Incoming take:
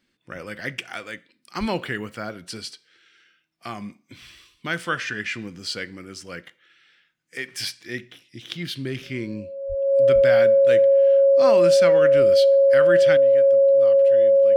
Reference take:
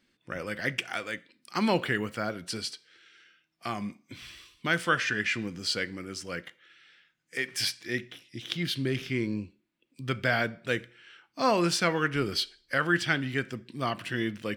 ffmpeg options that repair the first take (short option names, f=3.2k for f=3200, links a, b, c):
-filter_complex "[0:a]bandreject=f=550:w=30,asplit=3[a][b][c];[a]afade=t=out:st=1.59:d=0.02[d];[b]highpass=f=140:w=0.5412,highpass=f=140:w=1.3066,afade=t=in:st=1.59:d=0.02,afade=t=out:st=1.71:d=0.02[e];[c]afade=t=in:st=1.71:d=0.02[f];[d][e][f]amix=inputs=3:normalize=0,asplit=3[g][h][i];[g]afade=t=out:st=9.68:d=0.02[j];[h]highpass=f=140:w=0.5412,highpass=f=140:w=1.3066,afade=t=in:st=9.68:d=0.02,afade=t=out:st=9.8:d=0.02[k];[i]afade=t=in:st=9.8:d=0.02[l];[j][k][l]amix=inputs=3:normalize=0,asplit=3[m][n][o];[m]afade=t=out:st=10.14:d=0.02[p];[n]highpass=f=140:w=0.5412,highpass=f=140:w=1.3066,afade=t=in:st=10.14:d=0.02,afade=t=out:st=10.26:d=0.02[q];[o]afade=t=in:st=10.26:d=0.02[r];[p][q][r]amix=inputs=3:normalize=0,asetnsamples=n=441:p=0,asendcmd='13.17 volume volume 11.5dB',volume=0dB"